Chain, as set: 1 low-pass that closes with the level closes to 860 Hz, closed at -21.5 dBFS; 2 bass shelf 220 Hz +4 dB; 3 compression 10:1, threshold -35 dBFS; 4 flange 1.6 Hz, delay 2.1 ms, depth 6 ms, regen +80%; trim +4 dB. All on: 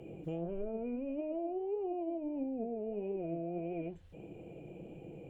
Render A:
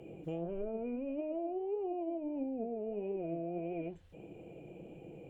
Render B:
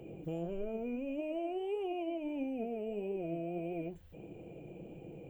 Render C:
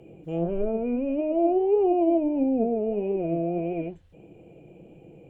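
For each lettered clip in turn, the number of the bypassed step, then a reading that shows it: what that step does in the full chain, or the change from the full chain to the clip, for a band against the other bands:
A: 2, 125 Hz band -2.0 dB; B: 1, 2 kHz band +7.5 dB; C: 3, mean gain reduction 9.0 dB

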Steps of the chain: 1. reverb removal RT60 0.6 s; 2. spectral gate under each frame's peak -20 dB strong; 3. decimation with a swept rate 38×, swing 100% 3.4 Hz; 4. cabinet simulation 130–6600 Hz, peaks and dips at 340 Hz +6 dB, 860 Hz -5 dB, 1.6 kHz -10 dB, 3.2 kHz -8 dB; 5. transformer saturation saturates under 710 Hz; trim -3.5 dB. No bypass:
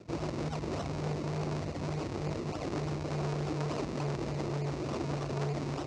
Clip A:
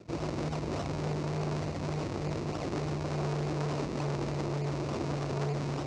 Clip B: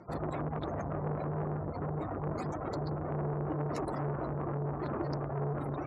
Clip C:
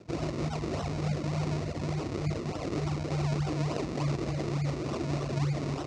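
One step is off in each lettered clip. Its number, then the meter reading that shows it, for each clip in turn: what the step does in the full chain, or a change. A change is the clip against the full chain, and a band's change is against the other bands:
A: 1, loudness change +1.5 LU; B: 3, crest factor change -2.0 dB; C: 5, crest factor change -3.0 dB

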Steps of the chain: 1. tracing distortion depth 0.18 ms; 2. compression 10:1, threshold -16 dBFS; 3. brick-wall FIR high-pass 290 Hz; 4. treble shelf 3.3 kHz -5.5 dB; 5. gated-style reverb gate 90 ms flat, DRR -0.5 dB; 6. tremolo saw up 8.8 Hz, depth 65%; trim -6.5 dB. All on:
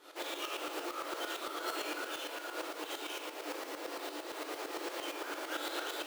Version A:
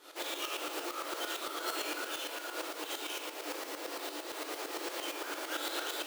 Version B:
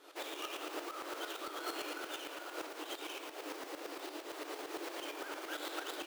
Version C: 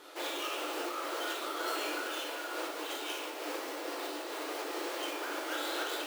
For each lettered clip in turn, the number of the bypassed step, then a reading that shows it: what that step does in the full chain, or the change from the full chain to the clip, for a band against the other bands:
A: 4, 8 kHz band +4.0 dB; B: 5, loudness change -3.0 LU; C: 6, loudness change +3.0 LU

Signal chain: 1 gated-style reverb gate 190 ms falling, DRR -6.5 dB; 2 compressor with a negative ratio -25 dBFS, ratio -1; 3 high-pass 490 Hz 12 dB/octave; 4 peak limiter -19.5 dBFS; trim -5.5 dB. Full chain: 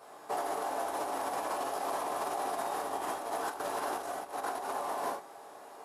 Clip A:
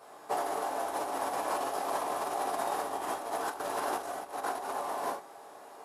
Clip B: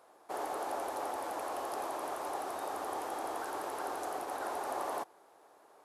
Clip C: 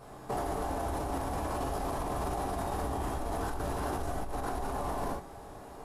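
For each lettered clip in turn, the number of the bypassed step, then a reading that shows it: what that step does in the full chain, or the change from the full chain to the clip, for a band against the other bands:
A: 4, crest factor change +4.5 dB; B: 1, momentary loudness spread change -2 LU; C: 3, 125 Hz band +25.0 dB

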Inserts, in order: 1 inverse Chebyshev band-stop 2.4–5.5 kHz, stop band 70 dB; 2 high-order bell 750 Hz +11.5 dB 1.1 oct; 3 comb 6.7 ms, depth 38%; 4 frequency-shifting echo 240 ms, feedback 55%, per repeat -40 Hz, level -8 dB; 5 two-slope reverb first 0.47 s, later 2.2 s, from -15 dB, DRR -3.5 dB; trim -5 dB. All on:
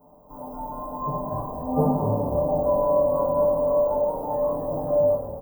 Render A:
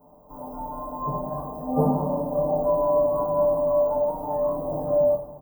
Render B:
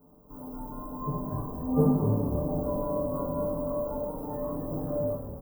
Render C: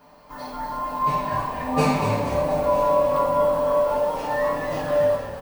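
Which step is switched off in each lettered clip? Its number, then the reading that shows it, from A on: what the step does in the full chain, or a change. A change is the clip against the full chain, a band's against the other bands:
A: 4, 125 Hz band -1.5 dB; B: 2, 1 kHz band -10.0 dB; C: 1, 1 kHz band +5.5 dB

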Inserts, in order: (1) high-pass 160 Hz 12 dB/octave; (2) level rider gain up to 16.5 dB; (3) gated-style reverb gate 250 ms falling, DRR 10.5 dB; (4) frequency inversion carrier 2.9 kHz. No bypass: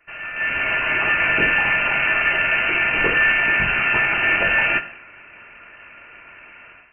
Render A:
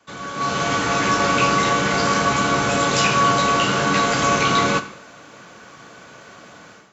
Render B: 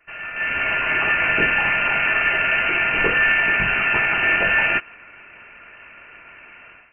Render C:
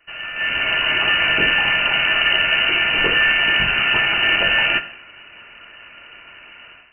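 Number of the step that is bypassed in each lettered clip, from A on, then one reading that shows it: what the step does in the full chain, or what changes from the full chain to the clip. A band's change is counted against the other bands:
4, 2 kHz band -15.5 dB; 3, momentary loudness spread change -1 LU; 1, loudness change +1.5 LU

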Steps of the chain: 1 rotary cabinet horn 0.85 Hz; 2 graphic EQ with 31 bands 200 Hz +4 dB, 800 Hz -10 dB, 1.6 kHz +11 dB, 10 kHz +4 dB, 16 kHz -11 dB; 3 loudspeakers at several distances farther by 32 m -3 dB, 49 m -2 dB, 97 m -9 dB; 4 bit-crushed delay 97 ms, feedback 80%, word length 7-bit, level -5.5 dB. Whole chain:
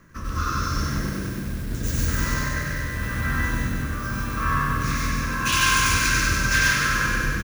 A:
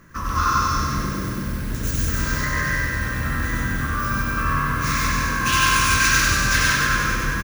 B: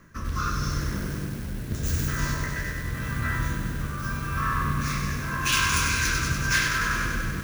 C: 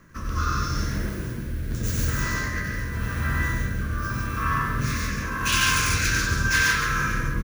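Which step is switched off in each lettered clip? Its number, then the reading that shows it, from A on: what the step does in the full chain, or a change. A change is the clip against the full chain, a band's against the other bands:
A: 1, 1 kHz band +2.5 dB; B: 3, momentary loudness spread change -1 LU; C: 4, 125 Hz band +2.0 dB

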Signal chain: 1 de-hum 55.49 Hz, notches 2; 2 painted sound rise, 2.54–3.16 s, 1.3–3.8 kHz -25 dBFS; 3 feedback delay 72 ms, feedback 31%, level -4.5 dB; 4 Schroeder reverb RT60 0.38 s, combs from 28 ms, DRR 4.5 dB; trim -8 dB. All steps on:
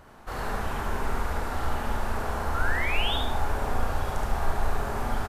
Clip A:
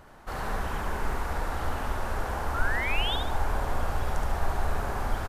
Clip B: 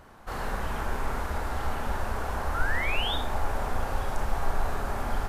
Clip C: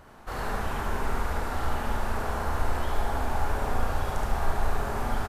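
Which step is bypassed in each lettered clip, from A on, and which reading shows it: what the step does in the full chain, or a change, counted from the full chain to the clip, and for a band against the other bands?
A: 4, loudness change -1.0 LU; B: 3, echo-to-direct -0.5 dB to -4.5 dB; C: 2, 4 kHz band -8.5 dB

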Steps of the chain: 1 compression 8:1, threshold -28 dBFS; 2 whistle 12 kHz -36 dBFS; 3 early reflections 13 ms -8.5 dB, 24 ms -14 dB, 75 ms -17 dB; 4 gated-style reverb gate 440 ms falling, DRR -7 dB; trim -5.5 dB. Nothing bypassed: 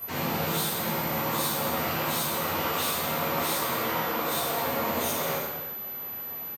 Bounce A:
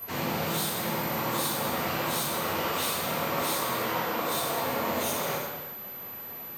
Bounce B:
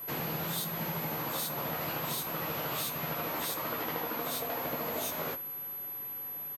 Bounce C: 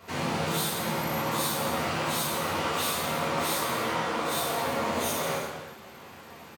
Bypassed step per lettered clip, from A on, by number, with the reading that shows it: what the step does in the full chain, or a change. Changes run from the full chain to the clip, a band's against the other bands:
3, momentary loudness spread change +2 LU; 4, echo-to-direct 8.0 dB to -7.0 dB; 2, momentary loudness spread change +7 LU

